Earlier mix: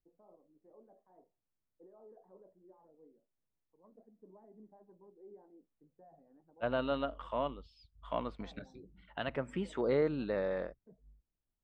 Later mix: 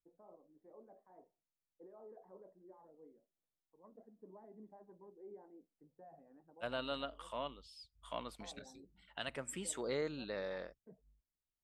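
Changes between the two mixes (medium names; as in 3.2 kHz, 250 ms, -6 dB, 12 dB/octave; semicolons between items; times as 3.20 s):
second voice -10.0 dB; master: remove tape spacing loss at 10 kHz 38 dB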